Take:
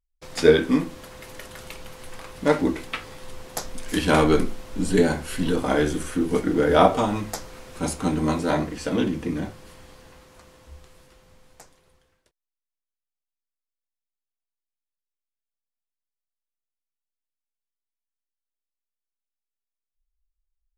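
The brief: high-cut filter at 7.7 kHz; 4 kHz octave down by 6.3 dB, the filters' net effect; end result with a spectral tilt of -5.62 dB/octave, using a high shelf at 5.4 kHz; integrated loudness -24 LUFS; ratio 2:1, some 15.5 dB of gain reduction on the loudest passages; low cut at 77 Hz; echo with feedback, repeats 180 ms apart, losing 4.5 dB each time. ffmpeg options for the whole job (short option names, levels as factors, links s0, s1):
-af "highpass=77,lowpass=7700,equalizer=f=4000:t=o:g=-5,highshelf=f=5400:g=-7.5,acompressor=threshold=0.0112:ratio=2,aecho=1:1:180|360|540|720|900|1080|1260|1440|1620:0.596|0.357|0.214|0.129|0.0772|0.0463|0.0278|0.0167|0.01,volume=3.35"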